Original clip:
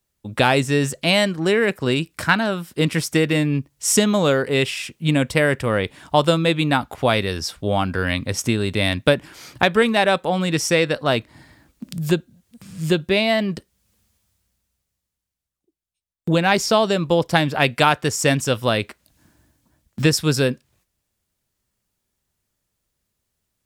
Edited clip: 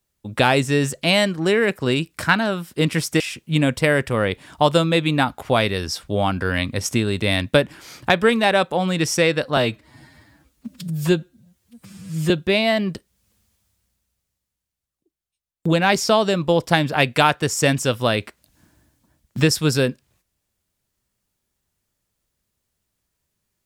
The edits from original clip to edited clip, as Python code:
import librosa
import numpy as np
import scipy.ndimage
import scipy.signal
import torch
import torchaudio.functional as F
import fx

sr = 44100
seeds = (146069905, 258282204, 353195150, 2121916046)

y = fx.edit(x, sr, fx.cut(start_s=3.2, length_s=1.53),
    fx.stretch_span(start_s=11.1, length_s=1.82, factor=1.5), tone=tone)